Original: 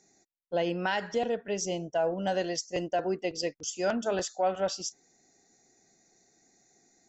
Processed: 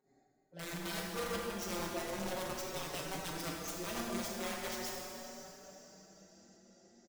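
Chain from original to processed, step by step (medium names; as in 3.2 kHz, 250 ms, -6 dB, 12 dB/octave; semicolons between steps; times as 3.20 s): local Wiener filter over 15 samples; dynamic bell 840 Hz, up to -8 dB, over -42 dBFS, Q 0.71; reverse; compression 20:1, threshold -37 dBFS, peak gain reduction 10 dB; reverse; on a send: echo that smears into a reverb 453 ms, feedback 62%, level -14 dB; on the sum: volume shaper 119 bpm, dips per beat 1, -15 dB, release 157 ms; integer overflow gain 35 dB; plate-style reverb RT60 2.8 s, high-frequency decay 0.8×, DRR -2.5 dB; endless flanger 5 ms +0.39 Hz; trim +2 dB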